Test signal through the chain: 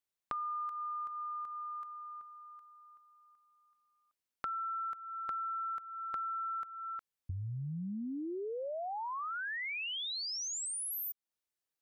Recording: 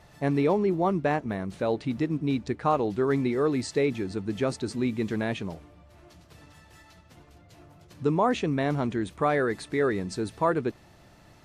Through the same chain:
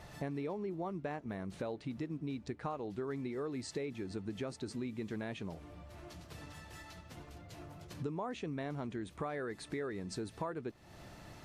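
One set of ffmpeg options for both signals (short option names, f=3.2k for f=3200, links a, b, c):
-af "acompressor=threshold=-41dB:ratio=5,volume=2dB"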